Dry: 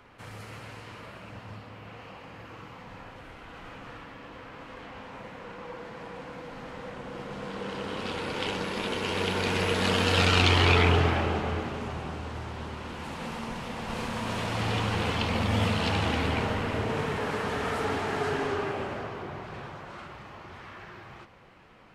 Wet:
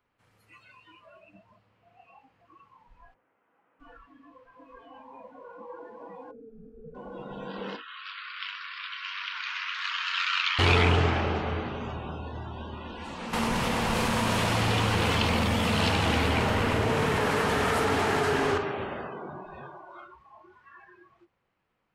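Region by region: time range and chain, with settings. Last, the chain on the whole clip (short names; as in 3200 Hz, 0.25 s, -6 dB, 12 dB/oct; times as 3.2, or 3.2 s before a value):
3.14–3.8 BPF 290–2700 Hz + air absorption 470 m
6.31–6.95 frequency shift -38 Hz + running mean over 44 samples
7.76–10.59 steep high-pass 1100 Hz 48 dB/oct + air absorption 150 m
13.33–18.58 high shelf 10000 Hz +10 dB + fast leveller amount 70%
whole clip: de-hum 51.69 Hz, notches 16; spectral noise reduction 22 dB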